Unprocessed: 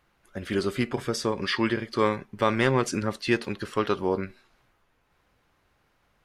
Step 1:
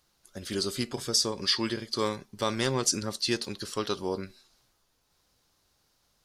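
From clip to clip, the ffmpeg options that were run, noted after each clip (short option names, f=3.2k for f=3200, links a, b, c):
-af "highshelf=f=3.3k:t=q:w=1.5:g=12.5,volume=-5.5dB"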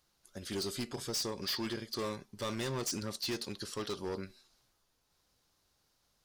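-af "asoftclip=type=hard:threshold=-27.5dB,volume=-4.5dB"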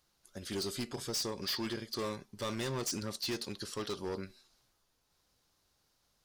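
-af anull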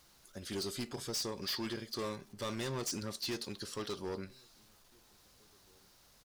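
-filter_complex "[0:a]aeval=exprs='val(0)+0.5*0.00126*sgn(val(0))':c=same,asplit=2[a][b];[b]adelay=1633,volume=-29dB,highshelf=f=4k:g=-36.7[c];[a][c]amix=inputs=2:normalize=0,volume=-2dB"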